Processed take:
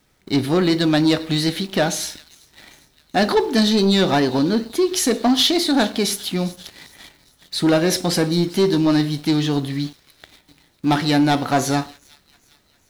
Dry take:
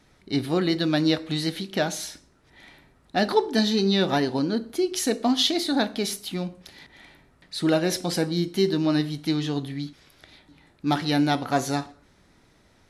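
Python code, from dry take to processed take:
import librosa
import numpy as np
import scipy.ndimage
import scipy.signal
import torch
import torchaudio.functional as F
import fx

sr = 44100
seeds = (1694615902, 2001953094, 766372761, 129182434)

y = fx.echo_wet_highpass(x, sr, ms=401, feedback_pct=67, hz=2300.0, wet_db=-18.5)
y = fx.quant_dither(y, sr, seeds[0], bits=10, dither='none')
y = fx.leveller(y, sr, passes=2)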